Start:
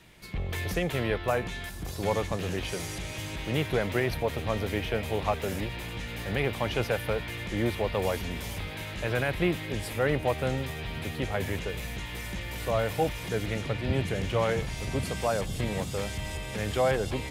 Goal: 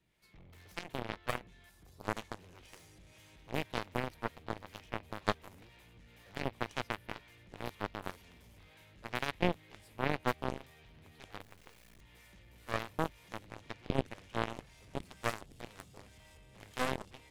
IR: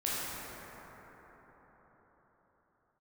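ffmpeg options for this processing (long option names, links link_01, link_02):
-filter_complex "[0:a]acrossover=split=470[link_01][link_02];[link_01]aeval=exprs='val(0)*(1-0.5/2+0.5/2*cos(2*PI*2*n/s))':channel_layout=same[link_03];[link_02]aeval=exprs='val(0)*(1-0.5/2-0.5/2*cos(2*PI*2*n/s))':channel_layout=same[link_04];[link_03][link_04]amix=inputs=2:normalize=0,aeval=exprs='0.178*(cos(1*acos(clip(val(0)/0.178,-1,1)))-cos(1*PI/2))+0.0708*(cos(2*acos(clip(val(0)/0.178,-1,1)))-cos(2*PI/2))+0.0631*(cos(3*acos(clip(val(0)/0.178,-1,1)))-cos(3*PI/2))+0.00126*(cos(7*acos(clip(val(0)/0.178,-1,1)))-cos(7*PI/2))+0.00447*(cos(8*acos(clip(val(0)/0.178,-1,1)))-cos(8*PI/2))':channel_layout=same,asettb=1/sr,asplit=3[link_05][link_06][link_07];[link_05]atrim=end=11.424[link_08];[link_06]atrim=start=11.42:end=12.01,asetpts=PTS-STARTPTS,afade=type=in:duration=0.004:curve=qsin,afade=type=out:start_time=0.586:duration=0.004:curve=qsin,acrusher=bits=7:dc=4:mix=0:aa=0.000001[link_09];[link_07]atrim=start=12.006[link_10];[link_08][link_09]acrossfade=duration=0.004:curve1=hsin:curve2=qsin[link_11];[link_11][link_10]acrossfade=duration=0.004:curve1=qsin:curve2=hsin"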